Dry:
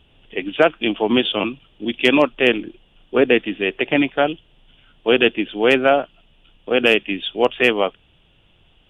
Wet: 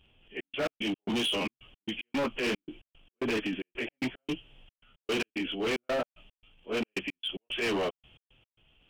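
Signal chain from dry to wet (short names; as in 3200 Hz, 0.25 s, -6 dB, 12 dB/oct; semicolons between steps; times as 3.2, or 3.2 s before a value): pitch shift by moving bins -1 st; bell 3300 Hz +4.5 dB 0.55 oct; transient shaper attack -3 dB, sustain +8 dB; step gate "xxx.x.x." 112 bpm -60 dB; overloaded stage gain 19 dB; gain -7.5 dB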